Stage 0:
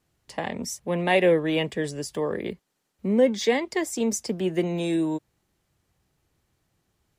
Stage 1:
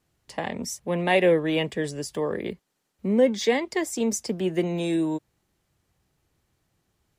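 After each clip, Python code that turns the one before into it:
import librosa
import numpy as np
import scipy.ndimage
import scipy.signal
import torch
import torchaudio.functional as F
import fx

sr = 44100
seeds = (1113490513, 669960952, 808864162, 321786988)

y = x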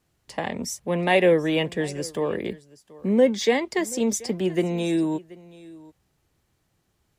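y = x + 10.0 ** (-21.0 / 20.0) * np.pad(x, (int(731 * sr / 1000.0), 0))[:len(x)]
y = y * 10.0 ** (1.5 / 20.0)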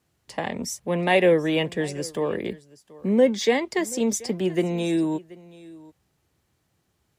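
y = scipy.signal.sosfilt(scipy.signal.butter(2, 53.0, 'highpass', fs=sr, output='sos'), x)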